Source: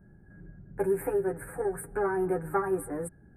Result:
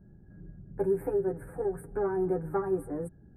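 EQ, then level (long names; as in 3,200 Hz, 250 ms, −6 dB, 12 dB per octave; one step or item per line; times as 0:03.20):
tilt shelving filter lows +8.5 dB, about 1,200 Hz
high-shelf EQ 12,000 Hz +6 dB
−7.0 dB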